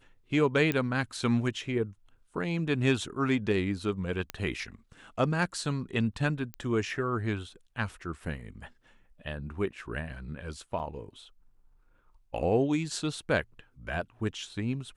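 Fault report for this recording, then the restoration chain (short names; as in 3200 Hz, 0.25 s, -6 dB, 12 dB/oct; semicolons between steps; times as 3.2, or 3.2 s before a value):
0.72 pop -15 dBFS
4.3 pop -18 dBFS
6.54 pop -23 dBFS
10.79–10.8 gap 6.2 ms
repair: de-click; interpolate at 10.79, 6.2 ms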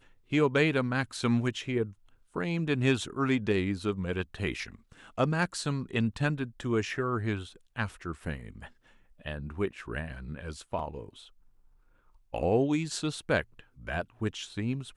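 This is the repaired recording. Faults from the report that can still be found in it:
0.72 pop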